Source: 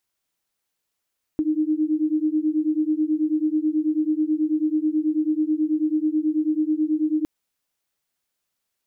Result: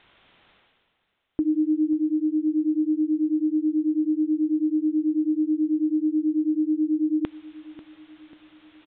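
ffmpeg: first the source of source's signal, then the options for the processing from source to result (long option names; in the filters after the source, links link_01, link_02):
-f lavfi -i "aevalsrc='0.0794*(sin(2*PI*304*t)+sin(2*PI*313.2*t))':duration=5.86:sample_rate=44100"
-af "areverse,acompressor=mode=upward:threshold=-29dB:ratio=2.5,areverse,aresample=8000,aresample=44100,aecho=1:1:541|1082|1623|2164|2705:0.158|0.0808|0.0412|0.021|0.0107"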